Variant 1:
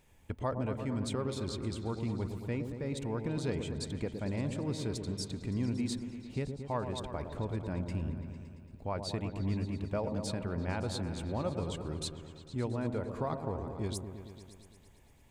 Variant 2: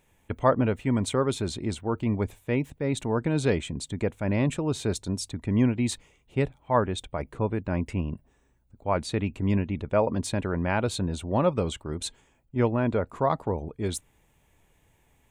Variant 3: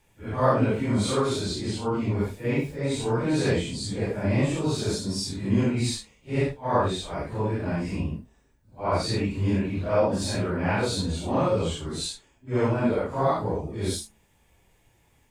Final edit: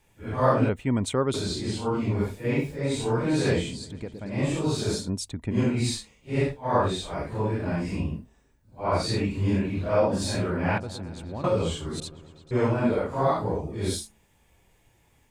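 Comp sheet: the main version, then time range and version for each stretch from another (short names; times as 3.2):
3
0.69–1.34 from 2
3.8–4.36 from 1, crossfade 0.24 s
5.05–5.54 from 2, crossfade 0.10 s
10.78–11.44 from 1
12–12.51 from 1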